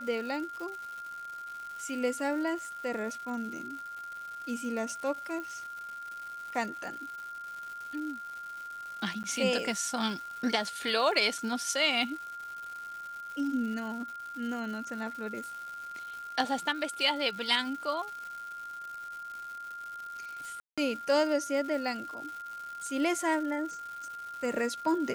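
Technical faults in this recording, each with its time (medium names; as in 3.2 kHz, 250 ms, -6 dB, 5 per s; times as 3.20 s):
crackle 320 per s -40 dBFS
whine 1.4 kHz -39 dBFS
5.40 s: pop -27 dBFS
9.23–9.24 s: dropout 9.6 ms
11.38 s: dropout 3.6 ms
20.60–20.78 s: dropout 176 ms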